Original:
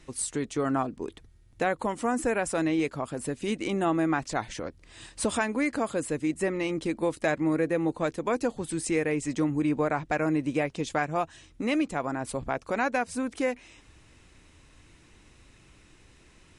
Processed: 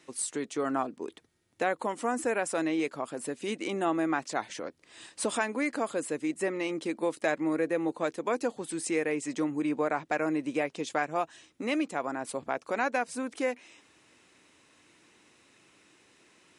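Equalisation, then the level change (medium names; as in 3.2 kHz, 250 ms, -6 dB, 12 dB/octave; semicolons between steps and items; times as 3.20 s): high-pass 260 Hz 12 dB/octave; -1.5 dB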